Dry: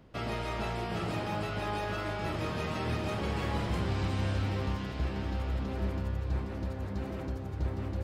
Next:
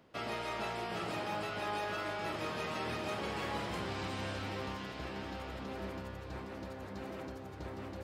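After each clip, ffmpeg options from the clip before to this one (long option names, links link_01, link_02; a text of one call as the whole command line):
ffmpeg -i in.wav -af "highpass=frequency=390:poles=1,volume=-1dB" out.wav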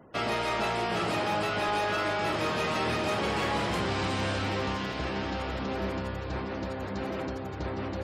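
ffmpeg -i in.wav -af "aeval=exprs='0.0562*sin(PI/2*1.58*val(0)/0.0562)':channel_layout=same,afftfilt=real='re*gte(hypot(re,im),0.00158)':imag='im*gte(hypot(re,im),0.00158)':win_size=1024:overlap=0.75,volume=2.5dB" out.wav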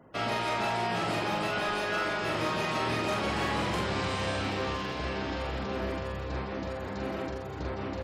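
ffmpeg -i in.wav -filter_complex "[0:a]asplit=2[link_01][link_02];[link_02]adelay=44,volume=-3.5dB[link_03];[link_01][link_03]amix=inputs=2:normalize=0,volume=-2.5dB" out.wav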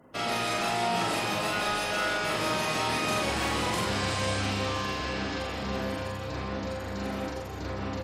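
ffmpeg -i in.wav -filter_complex "[0:a]equalizer=frequency=11000:width_type=o:width=1.8:gain=11,asplit=2[link_01][link_02];[link_02]aecho=0:1:40|100|190|325|527.5:0.631|0.398|0.251|0.158|0.1[link_03];[link_01][link_03]amix=inputs=2:normalize=0,volume=-1.5dB" out.wav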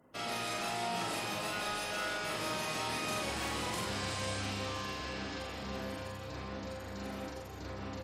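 ffmpeg -i in.wav -af "highshelf=frequency=5100:gain=5,volume=-8.5dB" out.wav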